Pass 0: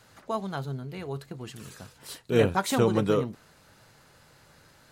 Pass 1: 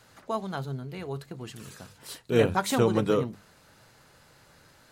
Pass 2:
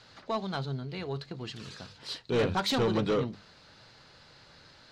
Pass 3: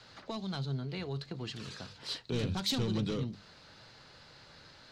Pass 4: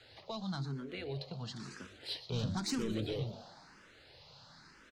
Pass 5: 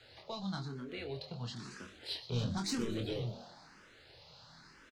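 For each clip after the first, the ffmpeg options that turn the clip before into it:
ffmpeg -i in.wav -af "bandreject=frequency=50:width_type=h:width=6,bandreject=frequency=100:width_type=h:width=6,bandreject=frequency=150:width_type=h:width=6,bandreject=frequency=200:width_type=h:width=6" out.wav
ffmpeg -i in.wav -af "lowpass=frequency=4400:width_type=q:width=2.4,asoftclip=type=tanh:threshold=-21.5dB" out.wav
ffmpeg -i in.wav -filter_complex "[0:a]acrossover=split=260|3000[link_01][link_02][link_03];[link_02]acompressor=threshold=-41dB:ratio=6[link_04];[link_01][link_04][link_03]amix=inputs=3:normalize=0" out.wav
ffmpeg -i in.wav -filter_complex "[0:a]asplit=7[link_01][link_02][link_03][link_04][link_05][link_06][link_07];[link_02]adelay=120,afreqshift=120,volume=-15.5dB[link_08];[link_03]adelay=240,afreqshift=240,volume=-20.2dB[link_09];[link_04]adelay=360,afreqshift=360,volume=-25dB[link_10];[link_05]adelay=480,afreqshift=480,volume=-29.7dB[link_11];[link_06]adelay=600,afreqshift=600,volume=-34.4dB[link_12];[link_07]adelay=720,afreqshift=720,volume=-39.2dB[link_13];[link_01][link_08][link_09][link_10][link_11][link_12][link_13]amix=inputs=7:normalize=0,asplit=2[link_14][link_15];[link_15]afreqshift=1[link_16];[link_14][link_16]amix=inputs=2:normalize=1" out.wav
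ffmpeg -i in.wav -filter_complex "[0:a]asplit=2[link_01][link_02];[link_02]adelay=25,volume=-5dB[link_03];[link_01][link_03]amix=inputs=2:normalize=0,volume=-1dB" out.wav

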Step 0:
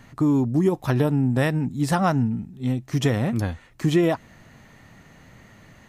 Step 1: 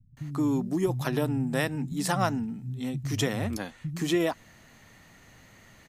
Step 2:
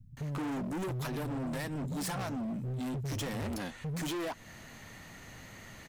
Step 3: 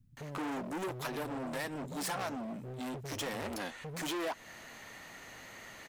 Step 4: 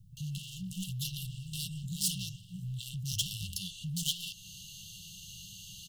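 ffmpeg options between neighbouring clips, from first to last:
ffmpeg -i in.wav -filter_complex "[0:a]highshelf=frequency=2700:gain=8,acrossover=split=160[link_01][link_02];[link_02]adelay=170[link_03];[link_01][link_03]amix=inputs=2:normalize=0,volume=-5.5dB" out.wav
ffmpeg -i in.wav -filter_complex "[0:a]asplit=2[link_01][link_02];[link_02]acompressor=threshold=-35dB:ratio=6,volume=-3dB[link_03];[link_01][link_03]amix=inputs=2:normalize=0,alimiter=limit=-16.5dB:level=0:latency=1:release=258,volume=34dB,asoftclip=hard,volume=-34dB" out.wav
ffmpeg -i in.wav -af "bass=frequency=250:gain=-13,treble=frequency=4000:gain=-2,volume=2dB" out.wav
ffmpeg -i in.wav -af "afftfilt=real='re*(1-between(b*sr/4096,200,2700))':imag='im*(1-between(b*sr/4096,200,2700))':win_size=4096:overlap=0.75,volume=8.5dB" out.wav

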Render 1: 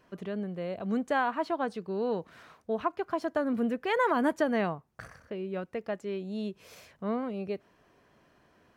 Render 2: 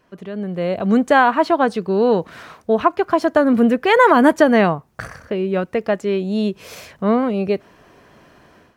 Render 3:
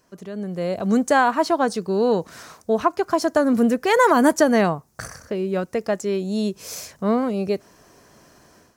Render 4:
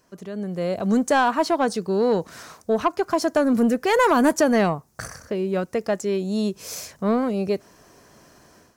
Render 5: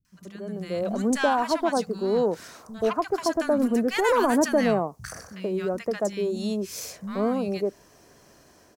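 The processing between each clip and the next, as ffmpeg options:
ffmpeg -i in.wav -af "dynaudnorm=framelen=330:gausssize=3:maxgain=11.5dB,volume=3.5dB" out.wav
ffmpeg -i in.wav -af "highshelf=frequency=4300:width_type=q:width=1.5:gain=10.5,volume=-3.5dB" out.wav
ffmpeg -i in.wav -af "asoftclip=type=tanh:threshold=-10dB" out.wav
ffmpeg -i in.wav -filter_complex "[0:a]acrossover=split=180|1200[link_01][link_02][link_03];[link_03]adelay=50[link_04];[link_02]adelay=130[link_05];[link_01][link_05][link_04]amix=inputs=3:normalize=0,volume=-2dB" out.wav

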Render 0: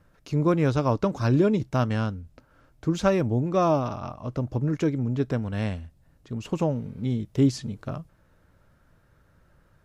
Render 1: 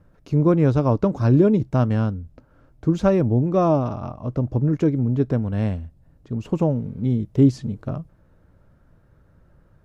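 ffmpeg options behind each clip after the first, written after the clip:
ffmpeg -i in.wav -af "tiltshelf=frequency=1100:gain=6" out.wav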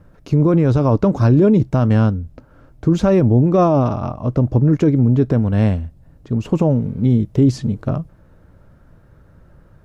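ffmpeg -i in.wav -af "alimiter=limit=-13.5dB:level=0:latency=1:release=19,volume=7.5dB" out.wav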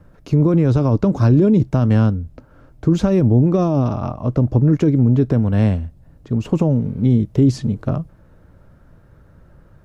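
ffmpeg -i in.wav -filter_complex "[0:a]acrossover=split=370|3000[link_01][link_02][link_03];[link_02]acompressor=threshold=-22dB:ratio=6[link_04];[link_01][link_04][link_03]amix=inputs=3:normalize=0" out.wav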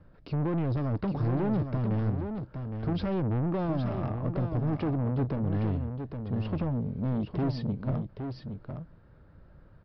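ffmpeg -i in.wav -af "aresample=11025,asoftclip=type=tanh:threshold=-17.5dB,aresample=44100,aecho=1:1:814:0.447,volume=-8dB" out.wav

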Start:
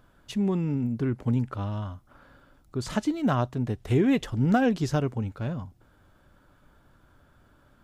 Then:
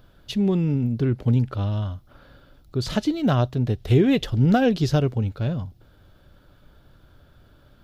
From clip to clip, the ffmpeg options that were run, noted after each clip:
ffmpeg -i in.wav -af "equalizer=frequency=250:width_type=o:width=1:gain=-5,equalizer=frequency=1000:width_type=o:width=1:gain=-8,equalizer=frequency=2000:width_type=o:width=1:gain=-5,equalizer=frequency=4000:width_type=o:width=1:gain=5,equalizer=frequency=8000:width_type=o:width=1:gain=-10,volume=8dB" out.wav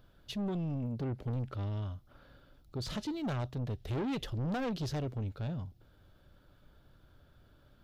ffmpeg -i in.wav -af "asoftclip=type=tanh:threshold=-23dB,volume=-8.5dB" out.wav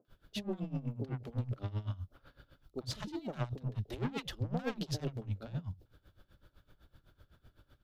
ffmpeg -i in.wav -filter_complex "[0:a]acrossover=split=210|690[link_01][link_02][link_03];[link_03]adelay=50[link_04];[link_01]adelay=80[link_05];[link_05][link_02][link_04]amix=inputs=3:normalize=0,aeval=exprs='val(0)*pow(10,-18*(0.5-0.5*cos(2*PI*7.9*n/s))/20)':channel_layout=same,volume=4dB" out.wav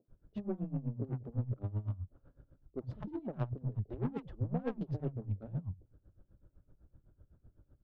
ffmpeg -i in.wav -af "adynamicsmooth=sensitivity=1.5:basefreq=580,volume=1dB" out.wav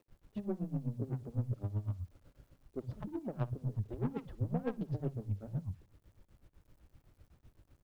ffmpeg -i in.wav -af "acrusher=bits=11:mix=0:aa=0.000001,aecho=1:1:60|120|180|240:0.0708|0.0389|0.0214|0.0118" out.wav

